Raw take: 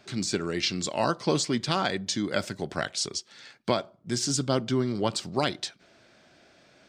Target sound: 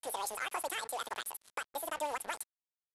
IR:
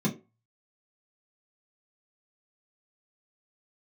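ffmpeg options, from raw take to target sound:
-af "agate=range=-33dB:threshold=-48dB:ratio=3:detection=peak,highpass=290,equalizer=frequency=2300:width=2.1:gain=-9.5,alimiter=limit=-20dB:level=0:latency=1:release=214,acompressor=threshold=-36dB:ratio=1.5,acrusher=bits=6:mix=0:aa=0.5,aresample=11025,aresample=44100,asetrate=103194,aresample=44100,volume=-1.5dB"

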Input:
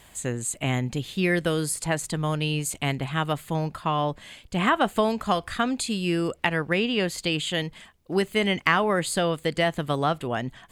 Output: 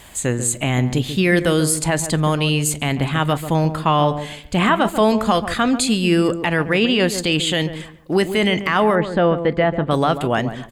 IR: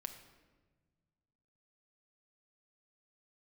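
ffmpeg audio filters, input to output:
-filter_complex "[0:a]asettb=1/sr,asplit=3[link_01][link_02][link_03];[link_01]atrim=end=8.954[link_04];[link_02]atrim=start=8.95:end=9.91,asetpts=PTS-STARTPTS,afade=type=in:duration=0.004:curve=qsin,afade=type=out:start_time=0.956:duration=0.004:curve=qsin,lowpass=1700[link_05];[link_03]atrim=start=9.906[link_06];[link_04][link_05]acrossfade=duration=0.004:curve1=hsin:curve2=qsin[link_07];[link_07][link_06]acrossfade=duration=0.004:curve1=qsin:curve2=hsin,alimiter=limit=-15.5dB:level=0:latency=1:release=11,asplit=2[link_08][link_09];[link_09]adelay=140,lowpass=frequency=860:poles=1,volume=-9dB,asplit=2[link_10][link_11];[link_11]adelay=140,lowpass=frequency=860:poles=1,volume=0.29,asplit=2[link_12][link_13];[link_13]adelay=140,lowpass=frequency=860:poles=1,volume=0.29[link_14];[link_08][link_10][link_12][link_14]amix=inputs=4:normalize=0,asplit=2[link_15][link_16];[1:a]atrim=start_sample=2205,atrim=end_sample=3969,asetrate=74970,aresample=44100[link_17];[link_16][link_17]afir=irnorm=-1:irlink=0,volume=2.5dB[link_18];[link_15][link_18]amix=inputs=2:normalize=0,volume=5.5dB"

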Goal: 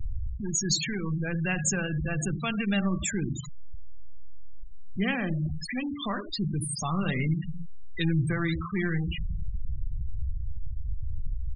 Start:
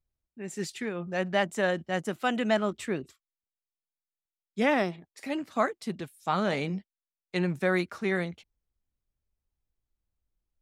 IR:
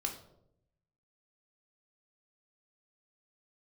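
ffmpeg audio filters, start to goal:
-filter_complex "[0:a]aeval=exprs='val(0)+0.5*0.0282*sgn(val(0))':channel_layout=same,equalizer=frequency=560:width=0.9:gain=-7.5,aecho=1:1:73|146|219:0.211|0.0592|0.0166,asetrate=40517,aresample=44100,asplit=2[link_01][link_02];[1:a]atrim=start_sample=2205[link_03];[link_02][link_03]afir=irnorm=-1:irlink=0,volume=-2.5dB[link_04];[link_01][link_04]amix=inputs=2:normalize=0,afftfilt=real='re*gte(hypot(re,im),0.0708)':imag='im*gte(hypot(re,im),0.0708)':win_size=1024:overlap=0.75,acrossover=split=180|3000[link_05][link_06][link_07];[link_06]acompressor=threshold=-46dB:ratio=2[link_08];[link_05][link_08][link_07]amix=inputs=3:normalize=0,adynamicequalizer=threshold=0.00631:dfrequency=3300:dqfactor=0.7:tfrequency=3300:tqfactor=0.7:attack=5:release=100:ratio=0.375:range=2.5:mode=boostabove:tftype=highshelf,volume=3.5dB"

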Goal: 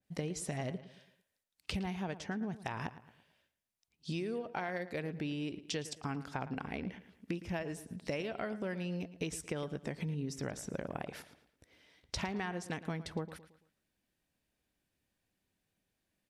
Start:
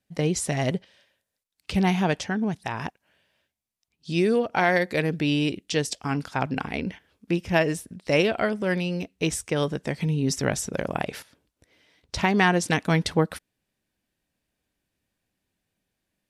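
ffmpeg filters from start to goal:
ffmpeg -i in.wav -filter_complex "[0:a]acompressor=threshold=-31dB:ratio=10,asplit=2[link_01][link_02];[link_02]adelay=112,lowpass=frequency=4100:poles=1,volume=-14.5dB,asplit=2[link_03][link_04];[link_04]adelay=112,lowpass=frequency=4100:poles=1,volume=0.41,asplit=2[link_05][link_06];[link_06]adelay=112,lowpass=frequency=4100:poles=1,volume=0.41,asplit=2[link_07][link_08];[link_08]adelay=112,lowpass=frequency=4100:poles=1,volume=0.41[link_09];[link_03][link_05][link_07][link_09]amix=inputs=4:normalize=0[link_10];[link_01][link_10]amix=inputs=2:normalize=0,adynamicequalizer=threshold=0.00282:dfrequency=2300:dqfactor=0.7:tfrequency=2300:tqfactor=0.7:attack=5:release=100:ratio=0.375:range=2.5:mode=cutabove:tftype=highshelf,volume=-3.5dB" out.wav

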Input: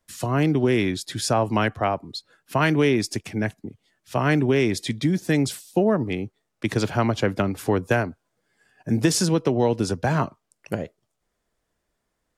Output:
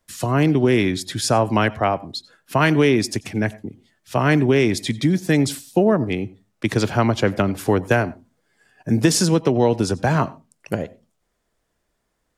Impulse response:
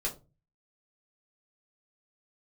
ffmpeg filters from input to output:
-filter_complex "[0:a]asplit=2[link_01][link_02];[1:a]atrim=start_sample=2205,asetrate=70560,aresample=44100,adelay=86[link_03];[link_02][link_03]afir=irnorm=-1:irlink=0,volume=-20.5dB[link_04];[link_01][link_04]amix=inputs=2:normalize=0,volume=3.5dB"

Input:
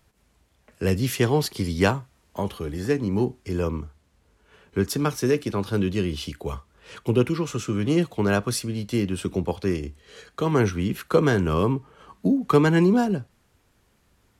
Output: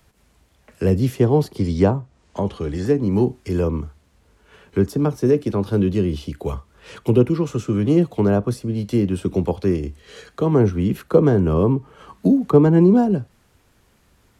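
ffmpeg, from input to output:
ffmpeg -i in.wav -filter_complex "[0:a]asettb=1/sr,asplit=3[link_01][link_02][link_03];[link_01]atrim=end=1.584[link_04];[link_02]atrim=start=1.58:end=2.86,asetpts=PTS-STARTPTS,afade=type=in:duration=0.004:curve=qsin,afade=type=out:start_time=1.276:duration=0.004:curve=qsin,lowpass=frequency=8400:width=0.5412,lowpass=frequency=8400:width=1.3066[link_05];[link_03]atrim=start=2.856[link_06];[link_04][link_05]acrossfade=duration=0.004:curve1=hsin:curve2=qsin[link_07];[link_07][link_06]acrossfade=duration=0.004:curve1=qsin:curve2=hsin,acrossover=split=170|880[link_08][link_09][link_10];[link_10]acompressor=threshold=-45dB:ratio=6[link_11];[link_08][link_09][link_11]amix=inputs=3:normalize=0,volume=5.5dB" out.wav

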